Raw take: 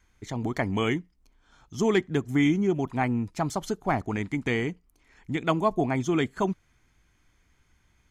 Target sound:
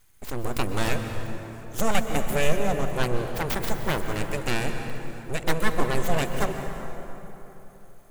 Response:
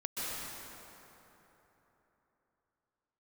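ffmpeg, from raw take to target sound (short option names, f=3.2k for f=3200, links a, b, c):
-filter_complex "[0:a]aexciter=amount=7.2:drive=8:freq=7.7k,aeval=exprs='abs(val(0))':c=same,asplit=2[a][b];[1:a]atrim=start_sample=2205,lowshelf=f=150:g=9[c];[b][c]afir=irnorm=-1:irlink=0,volume=-8.5dB[d];[a][d]amix=inputs=2:normalize=0"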